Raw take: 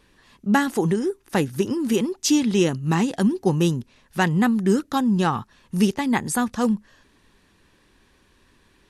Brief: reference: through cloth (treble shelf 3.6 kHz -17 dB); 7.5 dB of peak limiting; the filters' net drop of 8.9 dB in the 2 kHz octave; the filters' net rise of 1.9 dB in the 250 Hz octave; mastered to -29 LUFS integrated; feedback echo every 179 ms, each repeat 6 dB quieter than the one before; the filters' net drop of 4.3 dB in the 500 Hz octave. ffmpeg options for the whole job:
-af "equalizer=f=250:t=o:g=4.5,equalizer=f=500:t=o:g=-8.5,equalizer=f=2000:t=o:g=-6.5,alimiter=limit=0.2:level=0:latency=1,highshelf=f=3600:g=-17,aecho=1:1:179|358|537|716|895|1074:0.501|0.251|0.125|0.0626|0.0313|0.0157,volume=0.473"

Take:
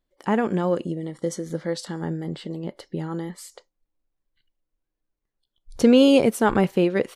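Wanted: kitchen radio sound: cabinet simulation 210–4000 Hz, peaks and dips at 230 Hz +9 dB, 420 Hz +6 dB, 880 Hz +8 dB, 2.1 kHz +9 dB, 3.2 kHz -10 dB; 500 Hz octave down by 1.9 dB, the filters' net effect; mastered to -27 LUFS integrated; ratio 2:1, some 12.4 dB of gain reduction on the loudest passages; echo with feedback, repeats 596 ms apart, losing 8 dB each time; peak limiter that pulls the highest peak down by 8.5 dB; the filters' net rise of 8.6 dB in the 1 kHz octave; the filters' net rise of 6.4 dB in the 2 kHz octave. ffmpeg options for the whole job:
-af "equalizer=f=500:t=o:g=-7,equalizer=f=1000:t=o:g=5.5,equalizer=f=2000:t=o:g=3,acompressor=threshold=0.0141:ratio=2,alimiter=level_in=1.33:limit=0.0631:level=0:latency=1,volume=0.75,highpass=210,equalizer=f=230:t=q:w=4:g=9,equalizer=f=420:t=q:w=4:g=6,equalizer=f=880:t=q:w=4:g=8,equalizer=f=2100:t=q:w=4:g=9,equalizer=f=3200:t=q:w=4:g=-10,lowpass=f=4000:w=0.5412,lowpass=f=4000:w=1.3066,aecho=1:1:596|1192|1788|2384|2980:0.398|0.159|0.0637|0.0255|0.0102,volume=2.51"

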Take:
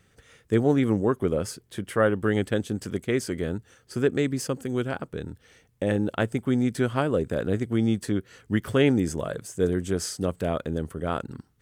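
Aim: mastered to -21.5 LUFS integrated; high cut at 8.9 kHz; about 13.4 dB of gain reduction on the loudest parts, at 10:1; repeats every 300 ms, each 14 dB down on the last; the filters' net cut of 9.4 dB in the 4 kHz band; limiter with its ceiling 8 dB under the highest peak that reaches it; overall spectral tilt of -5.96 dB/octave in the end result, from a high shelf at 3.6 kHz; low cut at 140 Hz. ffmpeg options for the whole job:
-af "highpass=140,lowpass=8900,highshelf=f=3600:g=-8.5,equalizer=f=4000:t=o:g=-7,acompressor=threshold=0.0282:ratio=10,alimiter=level_in=1.26:limit=0.0631:level=0:latency=1,volume=0.794,aecho=1:1:300|600:0.2|0.0399,volume=7.5"

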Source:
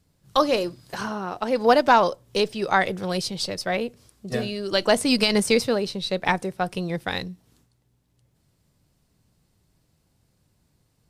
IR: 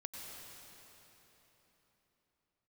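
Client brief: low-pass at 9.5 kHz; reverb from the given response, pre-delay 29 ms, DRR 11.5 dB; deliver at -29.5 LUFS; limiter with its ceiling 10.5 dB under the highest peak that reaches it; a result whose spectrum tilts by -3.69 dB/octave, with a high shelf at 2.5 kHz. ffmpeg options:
-filter_complex "[0:a]lowpass=9500,highshelf=f=2500:g=4,alimiter=limit=0.211:level=0:latency=1,asplit=2[s0][s1];[1:a]atrim=start_sample=2205,adelay=29[s2];[s1][s2]afir=irnorm=-1:irlink=0,volume=0.335[s3];[s0][s3]amix=inputs=2:normalize=0,volume=0.668"

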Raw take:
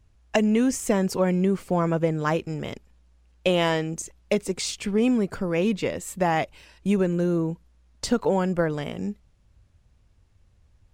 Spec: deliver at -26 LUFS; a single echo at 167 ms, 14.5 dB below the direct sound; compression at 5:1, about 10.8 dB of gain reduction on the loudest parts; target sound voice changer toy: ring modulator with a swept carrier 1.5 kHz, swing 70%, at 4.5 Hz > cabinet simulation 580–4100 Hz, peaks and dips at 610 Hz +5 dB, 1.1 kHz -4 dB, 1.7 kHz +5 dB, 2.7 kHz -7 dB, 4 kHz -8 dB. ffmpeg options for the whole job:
-af "acompressor=threshold=0.0316:ratio=5,aecho=1:1:167:0.188,aeval=exprs='val(0)*sin(2*PI*1500*n/s+1500*0.7/4.5*sin(2*PI*4.5*n/s))':c=same,highpass=580,equalizer=f=610:t=q:w=4:g=5,equalizer=f=1100:t=q:w=4:g=-4,equalizer=f=1700:t=q:w=4:g=5,equalizer=f=2700:t=q:w=4:g=-7,equalizer=f=4000:t=q:w=4:g=-8,lowpass=f=4100:w=0.5412,lowpass=f=4100:w=1.3066,volume=3.35"

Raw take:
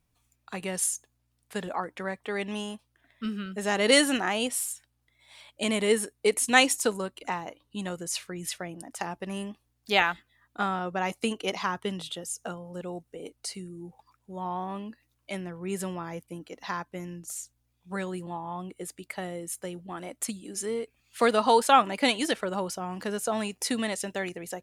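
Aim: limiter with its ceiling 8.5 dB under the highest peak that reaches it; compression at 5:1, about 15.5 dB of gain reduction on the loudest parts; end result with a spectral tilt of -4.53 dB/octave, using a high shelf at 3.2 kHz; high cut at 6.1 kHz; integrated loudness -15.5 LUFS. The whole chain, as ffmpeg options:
-af "lowpass=6100,highshelf=f=3200:g=-5,acompressor=threshold=0.0224:ratio=5,volume=15.8,alimiter=limit=0.708:level=0:latency=1"

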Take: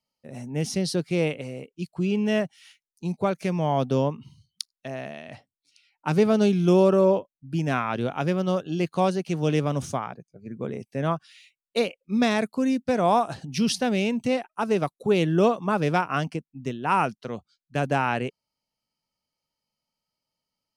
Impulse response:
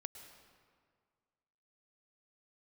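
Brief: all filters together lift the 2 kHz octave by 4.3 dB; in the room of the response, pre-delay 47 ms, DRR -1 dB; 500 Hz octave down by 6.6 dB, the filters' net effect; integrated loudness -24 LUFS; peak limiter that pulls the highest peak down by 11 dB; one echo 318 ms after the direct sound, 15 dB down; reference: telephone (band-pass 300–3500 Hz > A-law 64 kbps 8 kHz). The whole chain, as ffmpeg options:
-filter_complex "[0:a]equalizer=f=500:t=o:g=-8,equalizer=f=2000:t=o:g=7,alimiter=limit=0.119:level=0:latency=1,aecho=1:1:318:0.178,asplit=2[s0][s1];[1:a]atrim=start_sample=2205,adelay=47[s2];[s1][s2]afir=irnorm=-1:irlink=0,volume=1.78[s3];[s0][s3]amix=inputs=2:normalize=0,highpass=300,lowpass=3500,volume=1.88" -ar 8000 -c:a pcm_alaw

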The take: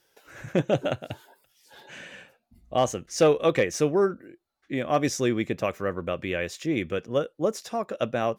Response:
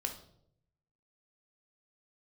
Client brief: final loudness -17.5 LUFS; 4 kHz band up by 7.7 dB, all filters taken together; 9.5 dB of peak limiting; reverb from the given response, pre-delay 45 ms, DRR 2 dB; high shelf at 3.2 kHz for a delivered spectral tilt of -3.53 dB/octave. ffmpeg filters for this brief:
-filter_complex "[0:a]highshelf=f=3200:g=9,equalizer=f=4000:t=o:g=3.5,alimiter=limit=0.133:level=0:latency=1,asplit=2[s0][s1];[1:a]atrim=start_sample=2205,adelay=45[s2];[s1][s2]afir=irnorm=-1:irlink=0,volume=0.708[s3];[s0][s3]amix=inputs=2:normalize=0,volume=2.99"

